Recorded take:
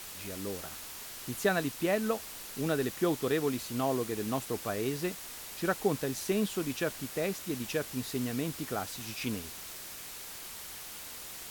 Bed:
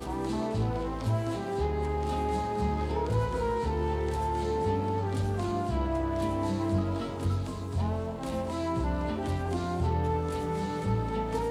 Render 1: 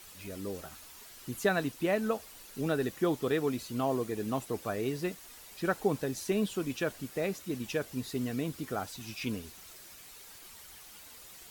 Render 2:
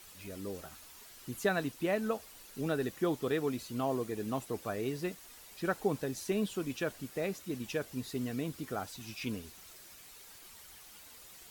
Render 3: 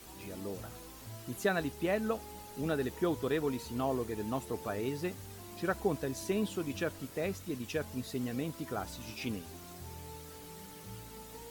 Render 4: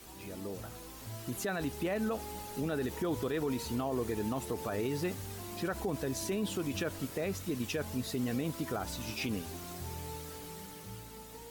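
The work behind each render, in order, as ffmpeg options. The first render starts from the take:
ffmpeg -i in.wav -af "afftdn=noise_reduction=9:noise_floor=-45" out.wav
ffmpeg -i in.wav -af "volume=-2.5dB" out.wav
ffmpeg -i in.wav -i bed.wav -filter_complex "[1:a]volume=-19.5dB[link_01];[0:a][link_01]amix=inputs=2:normalize=0" out.wav
ffmpeg -i in.wav -af "alimiter=level_in=6.5dB:limit=-24dB:level=0:latency=1:release=53,volume=-6.5dB,dynaudnorm=framelen=130:gausssize=17:maxgain=5dB" out.wav

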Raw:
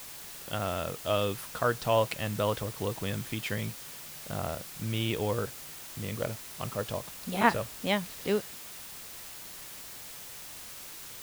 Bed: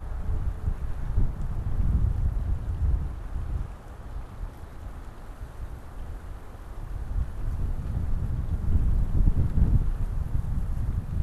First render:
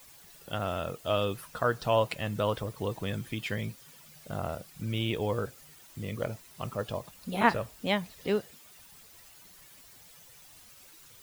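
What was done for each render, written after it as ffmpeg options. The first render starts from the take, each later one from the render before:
ffmpeg -i in.wav -af "afftdn=noise_reduction=12:noise_floor=-45" out.wav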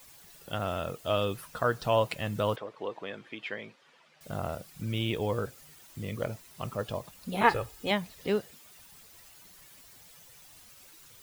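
ffmpeg -i in.wav -filter_complex "[0:a]asettb=1/sr,asplit=3[link_01][link_02][link_03];[link_01]atrim=end=2.564[link_04];[link_02]atrim=start=2.56:end=4.21,asetpts=PTS-STARTPTS,afade=type=in:duration=0.004:curve=qsin,afade=type=out:start_time=1.646:duration=0.004:curve=qsin,highpass=390,lowpass=2800[link_05];[link_03]atrim=start=4.206[link_06];[link_04][link_05]acrossfade=duration=0.004:curve1=hsin:curve2=qsin[link_07];[link_07][link_06]acrossfade=duration=0.004:curve1=qsin:curve2=hsin,asettb=1/sr,asplit=3[link_08][link_09][link_10];[link_08]atrim=end=7.434[link_11];[link_09]atrim=start=7.43:end=7.91,asetpts=PTS-STARTPTS,afade=type=in:duration=0.004:curve=qsin,afade=type=out:start_time=0.476:duration=0.004:curve=qsin,aecho=1:1:2.4:0.61,atrim=end_sample=21168[link_12];[link_10]atrim=start=7.906[link_13];[link_11][link_12]acrossfade=duration=0.004:curve1=hsin:curve2=qsin[link_14];[link_14][link_13]acrossfade=duration=0.004:curve1=qsin:curve2=hsin" out.wav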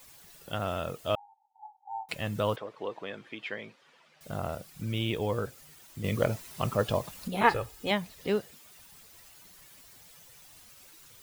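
ffmpeg -i in.wav -filter_complex "[0:a]asettb=1/sr,asplit=3[link_01][link_02][link_03];[link_01]atrim=end=1.154[link_04];[link_02]atrim=start=1.15:end=2.09,asetpts=PTS-STARTPTS,afade=type=in:duration=0.004:curve=qsin,afade=type=out:start_time=0.936:duration=0.004:curve=qsin,asuperpass=centerf=830:order=12:qfactor=5.9[link_05];[link_03]atrim=start=2.086[link_06];[link_04][link_05]acrossfade=duration=0.004:curve1=hsin:curve2=qsin[link_07];[link_07][link_06]acrossfade=duration=0.004:curve1=qsin:curve2=hsin,asettb=1/sr,asplit=3[link_08][link_09][link_10];[link_08]atrim=end=6.044[link_11];[link_09]atrim=start=6.04:end=7.28,asetpts=PTS-STARTPTS,afade=type=in:duration=0.004:curve=qsin,afade=type=out:start_time=1.236:duration=0.004:curve=qsin,acontrast=64[link_12];[link_10]atrim=start=7.276[link_13];[link_11][link_12]acrossfade=duration=0.004:curve1=hsin:curve2=qsin[link_14];[link_14][link_13]acrossfade=duration=0.004:curve1=qsin:curve2=hsin" out.wav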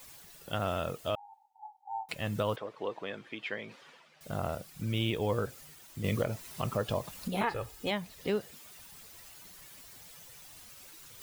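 ffmpeg -i in.wav -af "alimiter=limit=-20dB:level=0:latency=1:release=215,areverse,acompressor=mode=upward:threshold=-46dB:ratio=2.5,areverse" out.wav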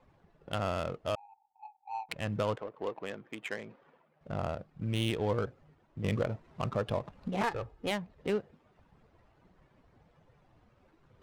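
ffmpeg -i in.wav -af "adynamicsmooth=sensitivity=7:basefreq=800" out.wav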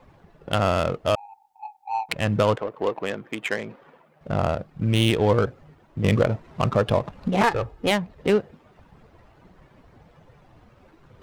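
ffmpeg -i in.wav -af "volume=11.5dB" out.wav

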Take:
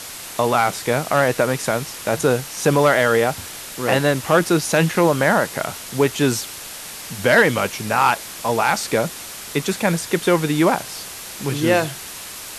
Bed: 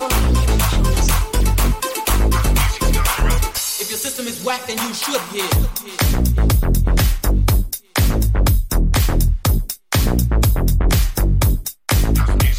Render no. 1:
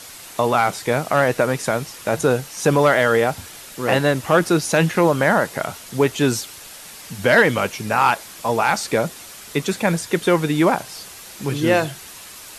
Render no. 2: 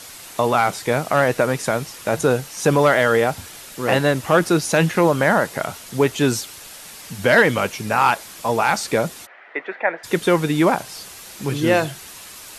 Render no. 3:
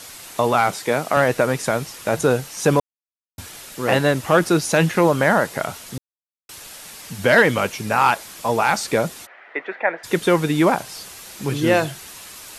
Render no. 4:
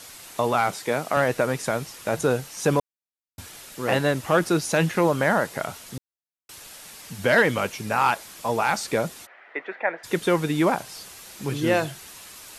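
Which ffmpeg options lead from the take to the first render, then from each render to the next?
ffmpeg -i in.wav -af "afftdn=noise_reduction=6:noise_floor=-34" out.wav
ffmpeg -i in.wav -filter_complex "[0:a]asplit=3[link_01][link_02][link_03];[link_01]afade=type=out:start_time=9.25:duration=0.02[link_04];[link_02]highpass=frequency=400:width=0.5412,highpass=frequency=400:width=1.3066,equalizer=frequency=430:width_type=q:width=4:gain=-6,equalizer=frequency=720:width_type=q:width=4:gain=3,equalizer=frequency=1100:width_type=q:width=4:gain=-4,equalizer=frequency=1900:width_type=q:width=4:gain=8,lowpass=frequency=2100:width=0.5412,lowpass=frequency=2100:width=1.3066,afade=type=in:start_time=9.25:duration=0.02,afade=type=out:start_time=10.03:duration=0.02[link_05];[link_03]afade=type=in:start_time=10.03:duration=0.02[link_06];[link_04][link_05][link_06]amix=inputs=3:normalize=0" out.wav
ffmpeg -i in.wav -filter_complex "[0:a]asettb=1/sr,asplit=3[link_01][link_02][link_03];[link_01]atrim=end=0.754[link_04];[link_02]atrim=start=0.75:end=1.17,asetpts=PTS-STARTPTS,afade=type=in:duration=0.004:curve=qsin,afade=type=out:start_time=0.416:duration=0.004:curve=qsin,highpass=170[link_05];[link_03]atrim=start=1.166[link_06];[link_04][link_05]acrossfade=duration=0.004:curve1=hsin:curve2=qsin[link_07];[link_07][link_06]acrossfade=duration=0.004:curve1=qsin:curve2=hsin,asplit=5[link_08][link_09][link_10][link_11][link_12];[link_08]atrim=end=2.8,asetpts=PTS-STARTPTS,afade=type=out:start_time=2.796:duration=0.004:curve=hsin[link_13];[link_09]atrim=start=2.8:end=3.38,asetpts=PTS-STARTPTS,volume=0[link_14];[link_10]atrim=start=3.38:end=5.98,asetpts=PTS-STARTPTS,afade=type=in:duration=0.004:curve=hsin,afade=type=out:start_time=2.596:duration=0.004:curve=hsin[link_15];[link_11]atrim=start=5.98:end=6.49,asetpts=PTS-STARTPTS,volume=0[link_16];[link_12]atrim=start=6.49,asetpts=PTS-STARTPTS,afade=type=in:duration=0.004:curve=hsin[link_17];[link_13][link_14][link_15][link_16][link_17]concat=n=5:v=0:a=1" out.wav
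ffmpeg -i in.wav -af "volume=-4.5dB" out.wav

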